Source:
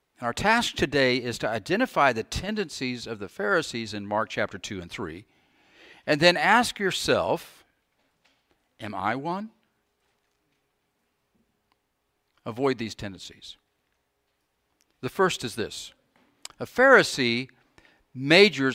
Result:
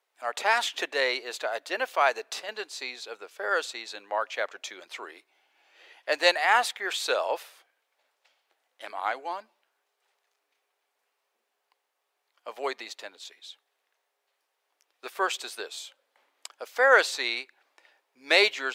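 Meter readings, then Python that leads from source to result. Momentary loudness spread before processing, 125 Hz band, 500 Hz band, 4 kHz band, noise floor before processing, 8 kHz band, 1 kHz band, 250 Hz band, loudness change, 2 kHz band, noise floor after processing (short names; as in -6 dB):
20 LU, under -35 dB, -5.0 dB, -2.0 dB, -76 dBFS, -2.0 dB, -2.0 dB, -17.5 dB, -3.0 dB, -2.0 dB, -80 dBFS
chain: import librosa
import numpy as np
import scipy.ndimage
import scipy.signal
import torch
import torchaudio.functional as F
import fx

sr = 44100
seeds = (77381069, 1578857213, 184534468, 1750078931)

y = scipy.signal.sosfilt(scipy.signal.butter(4, 480.0, 'highpass', fs=sr, output='sos'), x)
y = y * 10.0 ** (-2.0 / 20.0)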